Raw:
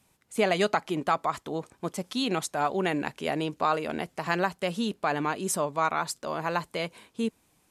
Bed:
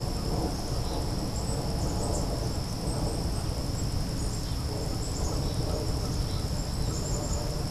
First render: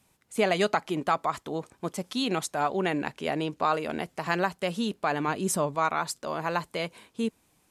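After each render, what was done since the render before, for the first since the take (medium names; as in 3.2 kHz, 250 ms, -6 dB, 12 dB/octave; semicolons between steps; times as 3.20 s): 2.64–3.66 s: treble shelf 8.4 kHz -5.5 dB; 5.28–5.75 s: bass shelf 210 Hz +8 dB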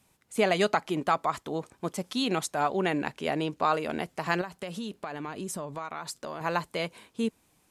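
4.41–6.41 s: compression, threshold -32 dBFS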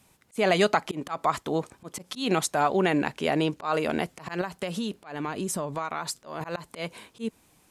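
in parallel at -1.5 dB: peak limiter -20 dBFS, peak gain reduction 9.5 dB; on the sum: slow attack 164 ms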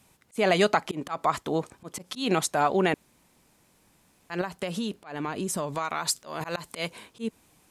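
2.94–4.30 s: room tone; 5.57–6.90 s: treble shelf 2.2 kHz +7.5 dB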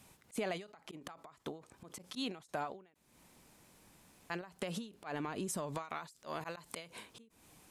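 compression 6:1, threshold -36 dBFS, peak gain reduction 17.5 dB; endings held to a fixed fall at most 140 dB/s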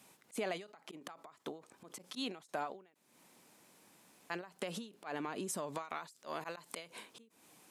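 high-pass 210 Hz 12 dB/octave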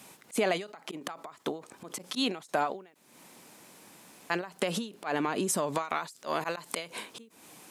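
trim +10.5 dB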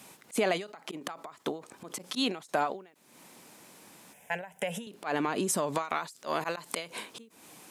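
4.13–4.87 s: static phaser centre 1.2 kHz, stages 6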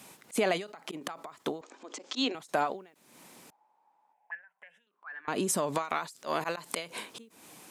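1.61–2.35 s: Chebyshev band-pass 260–7100 Hz, order 4; 3.50–5.28 s: auto-wah 780–1700 Hz, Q 13, up, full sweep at -32.5 dBFS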